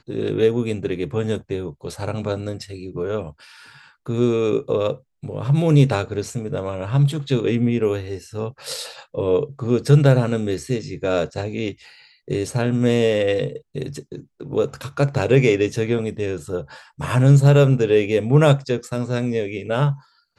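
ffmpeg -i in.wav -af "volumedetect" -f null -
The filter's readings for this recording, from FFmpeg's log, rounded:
mean_volume: -20.3 dB
max_volume: -2.0 dB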